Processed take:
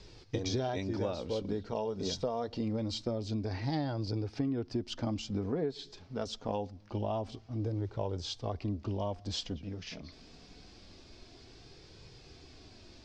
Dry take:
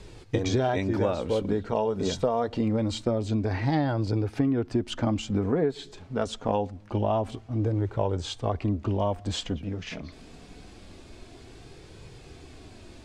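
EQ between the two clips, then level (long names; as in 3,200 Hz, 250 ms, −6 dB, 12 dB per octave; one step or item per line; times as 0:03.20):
dynamic equaliser 1,600 Hz, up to −4 dB, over −45 dBFS, Q 0.87
low-pass with resonance 5,200 Hz, resonance Q 3.2
−8.0 dB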